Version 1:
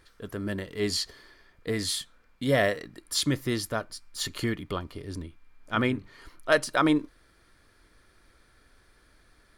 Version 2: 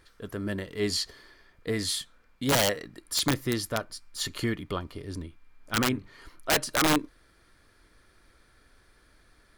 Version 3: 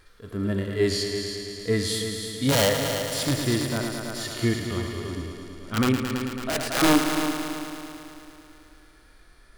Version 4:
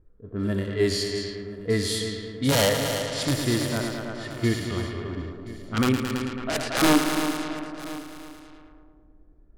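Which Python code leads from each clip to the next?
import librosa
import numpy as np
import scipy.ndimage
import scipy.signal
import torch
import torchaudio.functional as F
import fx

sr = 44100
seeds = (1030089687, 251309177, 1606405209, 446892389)

y1 = (np.mod(10.0 ** (16.5 / 20.0) * x + 1.0, 2.0) - 1.0) / 10.0 ** (16.5 / 20.0)
y2 = fx.wow_flutter(y1, sr, seeds[0], rate_hz=2.1, depth_cents=25.0)
y2 = fx.echo_heads(y2, sr, ms=110, heads='all three', feedback_pct=59, wet_db=-12.0)
y2 = fx.hpss(y2, sr, part='percussive', gain_db=-17)
y2 = y2 * librosa.db_to_amplitude(7.5)
y3 = fx.env_lowpass(y2, sr, base_hz=310.0, full_db=-22.5)
y3 = y3 + 10.0 ** (-17.5 / 20.0) * np.pad(y3, (int(1026 * sr / 1000.0), 0))[:len(y3)]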